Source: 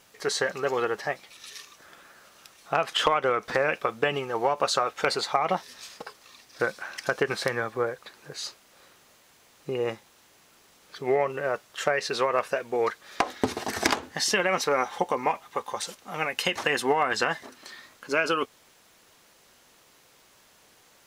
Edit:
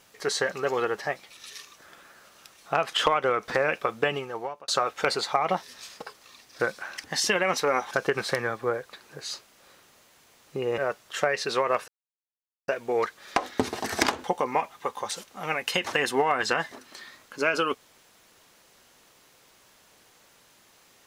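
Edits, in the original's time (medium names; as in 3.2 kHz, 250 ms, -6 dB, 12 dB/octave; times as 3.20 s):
4.06–4.68 s: fade out
9.91–11.42 s: delete
12.52 s: insert silence 0.80 s
14.08–14.95 s: move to 7.04 s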